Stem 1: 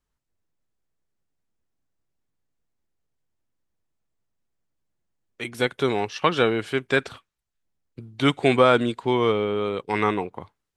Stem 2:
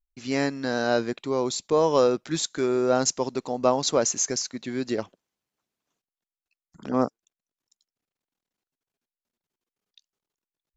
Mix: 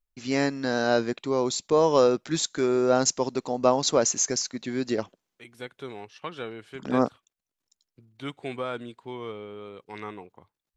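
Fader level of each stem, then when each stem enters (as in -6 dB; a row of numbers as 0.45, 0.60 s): -15.5, +0.5 dB; 0.00, 0.00 s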